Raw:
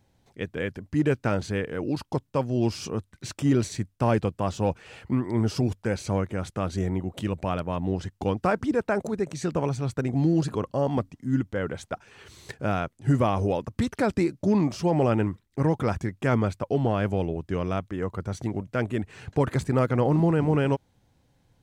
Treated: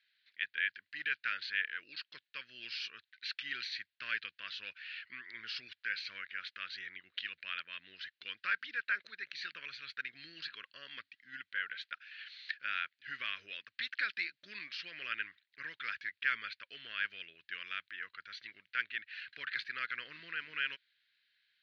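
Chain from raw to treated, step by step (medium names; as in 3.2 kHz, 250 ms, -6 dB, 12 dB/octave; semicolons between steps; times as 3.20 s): elliptic band-pass 1.6–4.3 kHz, stop band 40 dB; trim +3.5 dB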